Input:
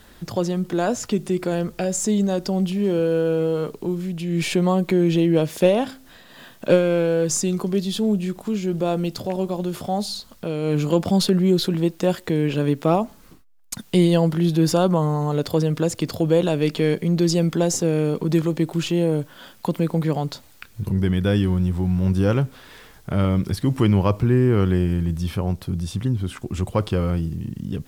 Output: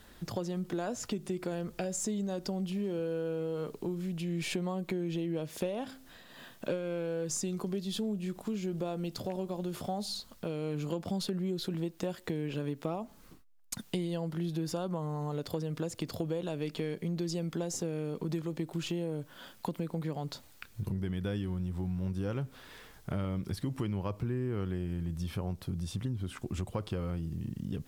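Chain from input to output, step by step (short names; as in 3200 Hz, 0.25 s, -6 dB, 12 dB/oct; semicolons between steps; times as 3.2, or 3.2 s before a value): compressor, threshold -24 dBFS, peak gain reduction 13.5 dB; gain -7 dB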